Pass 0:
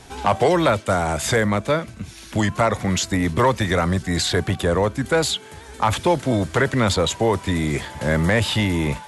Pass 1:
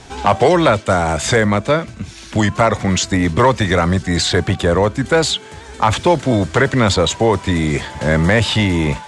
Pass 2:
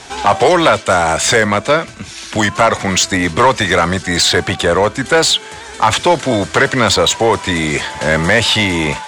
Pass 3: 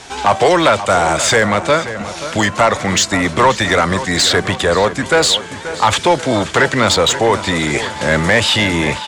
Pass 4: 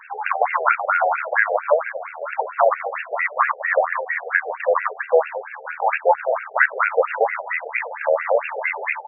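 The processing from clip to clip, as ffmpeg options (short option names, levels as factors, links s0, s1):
-af "lowpass=f=8600:w=0.5412,lowpass=f=8600:w=1.3066,volume=1.78"
-filter_complex "[0:a]highshelf=f=9000:g=9,asplit=2[s0][s1];[s1]highpass=f=720:p=1,volume=3.98,asoftclip=type=tanh:threshold=0.891[s2];[s0][s2]amix=inputs=2:normalize=0,lowpass=f=6700:p=1,volume=0.501"
-filter_complex "[0:a]asplit=2[s0][s1];[s1]adelay=531,lowpass=f=4200:p=1,volume=0.237,asplit=2[s2][s3];[s3]adelay=531,lowpass=f=4200:p=1,volume=0.53,asplit=2[s4][s5];[s5]adelay=531,lowpass=f=4200:p=1,volume=0.53,asplit=2[s6][s7];[s7]adelay=531,lowpass=f=4200:p=1,volume=0.53,asplit=2[s8][s9];[s9]adelay=531,lowpass=f=4200:p=1,volume=0.53[s10];[s0][s2][s4][s6][s8][s10]amix=inputs=6:normalize=0,volume=0.891"
-af "tremolo=f=79:d=0.571,afftfilt=real='re*between(b*sr/1024,550*pow(2000/550,0.5+0.5*sin(2*PI*4.4*pts/sr))/1.41,550*pow(2000/550,0.5+0.5*sin(2*PI*4.4*pts/sr))*1.41)':imag='im*between(b*sr/1024,550*pow(2000/550,0.5+0.5*sin(2*PI*4.4*pts/sr))/1.41,550*pow(2000/550,0.5+0.5*sin(2*PI*4.4*pts/sr))*1.41)':win_size=1024:overlap=0.75,volume=1.33"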